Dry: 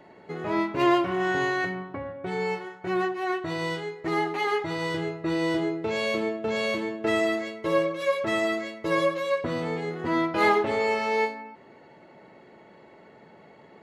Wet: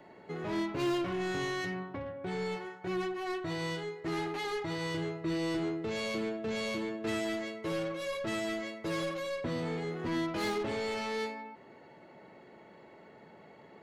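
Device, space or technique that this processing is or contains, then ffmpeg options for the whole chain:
one-band saturation: -filter_complex "[0:a]acrossover=split=300|3500[a][b][c];[b]asoftclip=type=tanh:threshold=-33dB[d];[a][d][c]amix=inputs=3:normalize=0,volume=-3dB"

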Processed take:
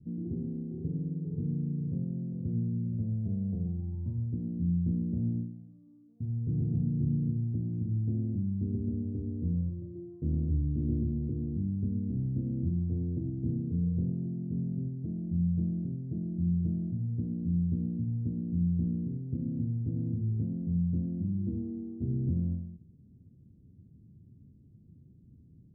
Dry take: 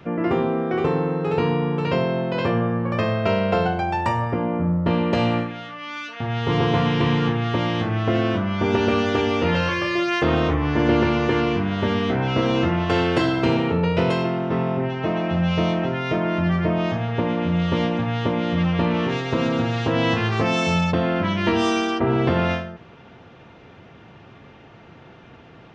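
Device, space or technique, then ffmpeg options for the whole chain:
the neighbour's flat through the wall: -af "lowpass=f=240:w=0.5412,lowpass=f=240:w=1.3066,equalizer=f=81:t=o:w=0.8:g=4.5,volume=-7.5dB"

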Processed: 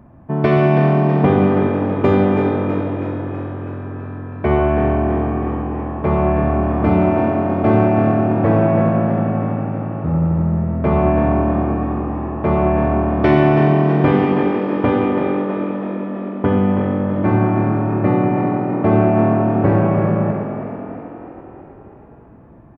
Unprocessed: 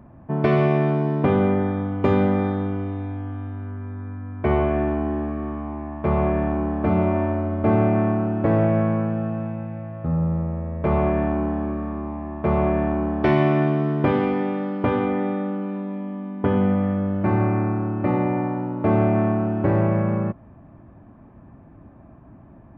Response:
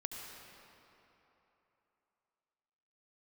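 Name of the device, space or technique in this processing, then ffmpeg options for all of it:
keyed gated reverb: -filter_complex "[0:a]asplit=3[a][b][c];[1:a]atrim=start_sample=2205[d];[b][d]afir=irnorm=-1:irlink=0[e];[c]apad=whole_len=1004173[f];[e][f]sidechaingate=range=-7dB:threshold=-38dB:ratio=16:detection=peak,volume=1dB[g];[a][g]amix=inputs=2:normalize=0,asettb=1/sr,asplit=3[h][i][j];[h]atrim=end=6.624[k];[i]atrim=start=6.62:end=8.28,asetpts=PTS-STARTPTS,afade=t=in:d=0.004:c=qsin,afade=t=out:st=1.656:d=0.004:c=qsin,aemphasis=mode=production:type=50kf[l];[j]atrim=start=8.276[m];[k][l]acrossfade=d=0.004:c1=hsin:c2=qsin[n];[n][m]acrossfade=d=0.004:c1=qsin:c2=hsin,asplit=8[o][p][q][r][s][t][u][v];[p]adelay=325,afreqshift=43,volume=-9.5dB[w];[q]adelay=650,afreqshift=86,volume=-14.2dB[x];[r]adelay=975,afreqshift=129,volume=-19dB[y];[s]adelay=1300,afreqshift=172,volume=-23.7dB[z];[t]adelay=1625,afreqshift=215,volume=-28.4dB[aa];[u]adelay=1950,afreqshift=258,volume=-33.2dB[ab];[v]adelay=2275,afreqshift=301,volume=-37.9dB[ac];[o][w][x][y][z][aa][ab][ac]amix=inputs=8:normalize=0,volume=-1dB"

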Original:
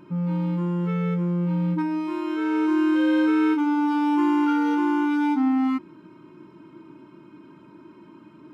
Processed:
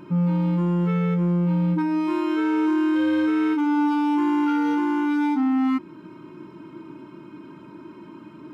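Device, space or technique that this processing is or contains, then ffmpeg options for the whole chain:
soft clipper into limiter: -af "asoftclip=type=tanh:threshold=-14dB,alimiter=limit=-21.5dB:level=0:latency=1:release=340,volume=5.5dB"

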